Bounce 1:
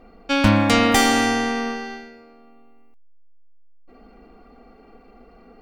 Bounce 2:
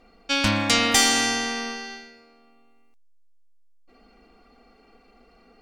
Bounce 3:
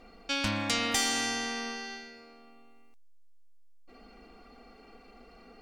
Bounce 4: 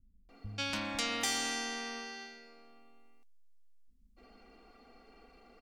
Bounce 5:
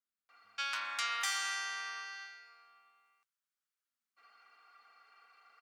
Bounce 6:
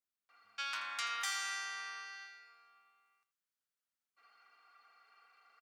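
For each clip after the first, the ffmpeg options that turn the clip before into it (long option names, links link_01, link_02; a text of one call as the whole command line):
ffmpeg -i in.wav -af "equalizer=frequency=6100:width_type=o:width=2.9:gain=14,volume=-8.5dB" out.wav
ffmpeg -i in.wav -af "acompressor=threshold=-49dB:ratio=1.5,volume=2dB" out.wav
ffmpeg -i in.wav -filter_complex "[0:a]acrossover=split=160[link_01][link_02];[link_02]adelay=290[link_03];[link_01][link_03]amix=inputs=2:normalize=0,volume=-5dB" out.wav
ffmpeg -i in.wav -af "highpass=frequency=1300:width_type=q:width=3,volume=-3.5dB" out.wav
ffmpeg -i in.wav -af "aecho=1:1:82:0.211,volume=-3dB" out.wav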